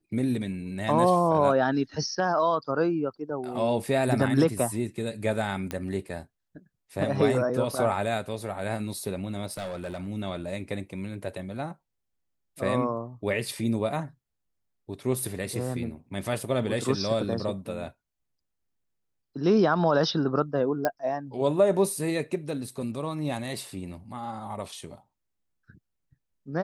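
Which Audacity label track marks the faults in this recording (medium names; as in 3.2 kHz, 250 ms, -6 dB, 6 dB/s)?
5.710000	5.710000	pop -16 dBFS
9.510000	10.070000	clipped -30 dBFS
20.850000	20.850000	pop -12 dBFS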